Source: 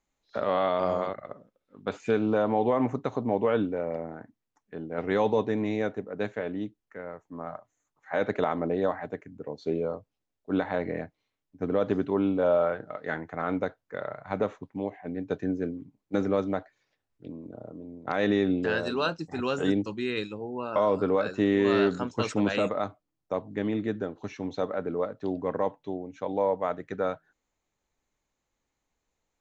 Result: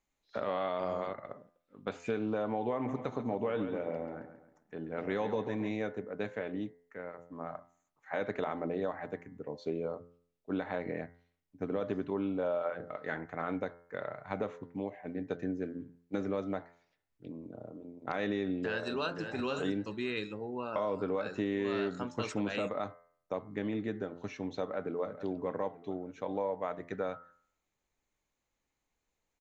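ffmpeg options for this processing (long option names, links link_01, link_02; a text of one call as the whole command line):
ffmpeg -i in.wav -filter_complex "[0:a]asplit=3[link_01][link_02][link_03];[link_01]afade=type=out:start_time=2.87:duration=0.02[link_04];[link_02]aecho=1:1:137|274|411|548:0.299|0.116|0.0454|0.0177,afade=type=in:start_time=2.87:duration=0.02,afade=type=out:start_time=5.7:duration=0.02[link_05];[link_03]afade=type=in:start_time=5.7:duration=0.02[link_06];[link_04][link_05][link_06]amix=inputs=3:normalize=0,asplit=2[link_07][link_08];[link_08]afade=type=in:start_time=18.58:duration=0.01,afade=type=out:start_time=19.26:duration=0.01,aecho=0:1:520|1040|1560:0.298538|0.0597077|0.0119415[link_09];[link_07][link_09]amix=inputs=2:normalize=0,asplit=2[link_10][link_11];[link_11]afade=type=in:start_time=24.6:duration=0.01,afade=type=out:start_time=25.14:duration=0.01,aecho=0:1:440|880|1320|1760|2200:0.188365|0.0941825|0.0470912|0.0235456|0.0117728[link_12];[link_10][link_12]amix=inputs=2:normalize=0,equalizer=frequency=2300:width_type=o:width=0.66:gain=2.5,bandreject=frequency=86.03:width_type=h:width=4,bandreject=frequency=172.06:width_type=h:width=4,bandreject=frequency=258.09:width_type=h:width=4,bandreject=frequency=344.12:width_type=h:width=4,bandreject=frequency=430.15:width_type=h:width=4,bandreject=frequency=516.18:width_type=h:width=4,bandreject=frequency=602.21:width_type=h:width=4,bandreject=frequency=688.24:width_type=h:width=4,bandreject=frequency=774.27:width_type=h:width=4,bandreject=frequency=860.3:width_type=h:width=4,bandreject=frequency=946.33:width_type=h:width=4,bandreject=frequency=1032.36:width_type=h:width=4,bandreject=frequency=1118.39:width_type=h:width=4,bandreject=frequency=1204.42:width_type=h:width=4,bandreject=frequency=1290.45:width_type=h:width=4,bandreject=frequency=1376.48:width_type=h:width=4,bandreject=frequency=1462.51:width_type=h:width=4,bandreject=frequency=1548.54:width_type=h:width=4,bandreject=frequency=1634.57:width_type=h:width=4,bandreject=frequency=1720.6:width_type=h:width=4,bandreject=frequency=1806.63:width_type=h:width=4,bandreject=frequency=1892.66:width_type=h:width=4,bandreject=frequency=1978.69:width_type=h:width=4,bandreject=frequency=2064.72:width_type=h:width=4,bandreject=frequency=2150.75:width_type=h:width=4,acompressor=threshold=-28dB:ratio=2.5,volume=-3.5dB" out.wav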